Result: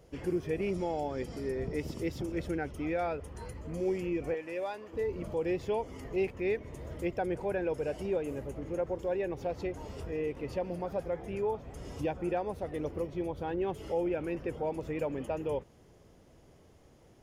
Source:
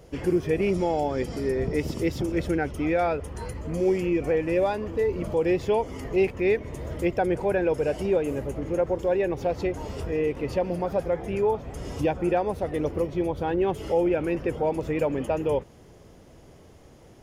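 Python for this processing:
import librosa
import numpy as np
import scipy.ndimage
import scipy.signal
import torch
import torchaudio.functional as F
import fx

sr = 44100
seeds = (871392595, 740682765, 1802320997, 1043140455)

y = fx.highpass(x, sr, hz=680.0, slope=6, at=(4.34, 4.93))
y = y * librosa.db_to_amplitude(-8.5)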